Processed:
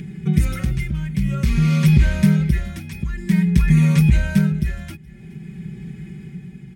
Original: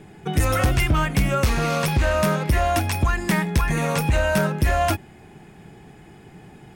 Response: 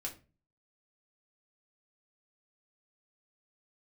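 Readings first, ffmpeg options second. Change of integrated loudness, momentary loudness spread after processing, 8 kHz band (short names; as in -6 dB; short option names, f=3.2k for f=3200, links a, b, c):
+3.0 dB, 20 LU, -7.0 dB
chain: -filter_complex "[0:a]tremolo=f=0.51:d=0.74,highpass=56,highshelf=f=2.6k:g=-8.5,bandreject=f=2.7k:w=24,aecho=1:1:5.2:0.76,asplit=2[a][b];[b]acompressor=mode=upward:threshold=-28dB:ratio=2.5,volume=0dB[c];[a][c]amix=inputs=2:normalize=0,firequalizer=gain_entry='entry(160,0);entry(300,-11);entry(680,-27);entry(2100,-7)':delay=0.05:min_phase=1,aecho=1:1:421:0.075,volume=3.5dB"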